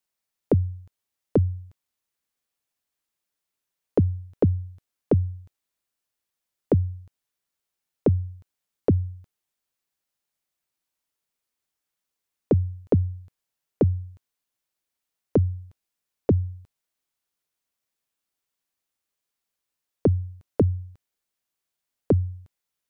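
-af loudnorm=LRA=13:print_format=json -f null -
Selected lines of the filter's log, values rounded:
"input_i" : "-26.0",
"input_tp" : "-10.8",
"input_lra" : "3.7",
"input_thresh" : "-37.2",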